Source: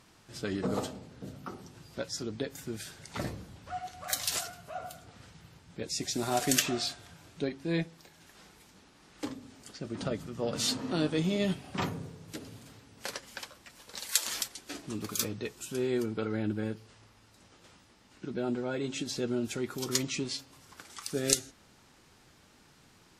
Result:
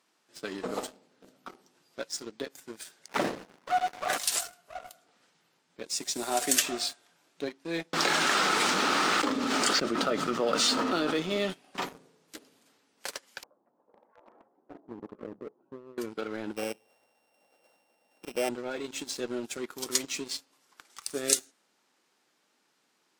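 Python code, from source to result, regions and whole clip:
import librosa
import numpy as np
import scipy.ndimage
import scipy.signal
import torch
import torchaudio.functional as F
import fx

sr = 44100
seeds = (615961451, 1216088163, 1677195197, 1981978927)

y = fx.chain(x, sr, fx.leveller(passes=3),
    fx.air_absorb(metres=77.0),
    fx.running_max(window=9), at=(3.08, 4.18))
y = fx.chain(y, sr, fx.lowpass(hz=5200.0, slope=12),
    fx.peak_eq(hz=1300.0, db=9.5, octaves=0.27),
    fx.env_flatten(amount_pct=100), at=(7.93, 11.5))
y = fx.chain(y, sr, fx.cheby2_lowpass(hz=5000.0, order=4, stop_db=80),
    fx.over_compress(threshold_db=-37.0, ratio=-1.0), at=(13.43, 15.98))
y = fx.chain(y, sr, fx.sample_sort(block=16),
    fx.band_shelf(hz=640.0, db=10.0, octaves=1.0), at=(16.56, 18.49))
y = scipy.signal.sosfilt(scipy.signal.bessel(4, 330.0, 'highpass', norm='mag', fs=sr, output='sos'), y)
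y = fx.dynamic_eq(y, sr, hz=8800.0, q=2.2, threshold_db=-51.0, ratio=4.0, max_db=6)
y = fx.leveller(y, sr, passes=2)
y = y * 10.0 ** (-6.0 / 20.0)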